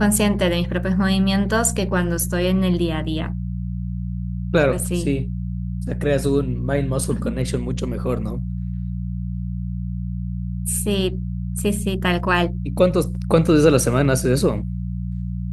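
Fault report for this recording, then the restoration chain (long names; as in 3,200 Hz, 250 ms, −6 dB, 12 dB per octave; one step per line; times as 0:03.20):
mains hum 60 Hz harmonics 3 −26 dBFS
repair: hum removal 60 Hz, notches 3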